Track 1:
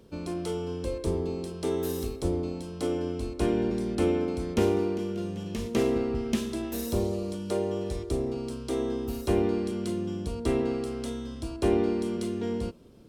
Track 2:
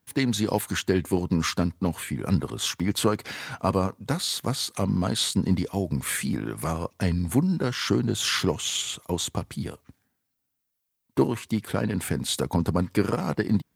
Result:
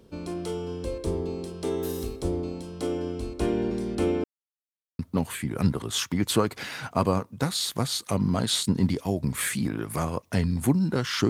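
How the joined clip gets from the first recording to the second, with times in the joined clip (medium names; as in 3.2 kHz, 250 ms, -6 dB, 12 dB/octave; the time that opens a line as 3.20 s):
track 1
4.24–4.99 s: mute
4.99 s: go over to track 2 from 1.67 s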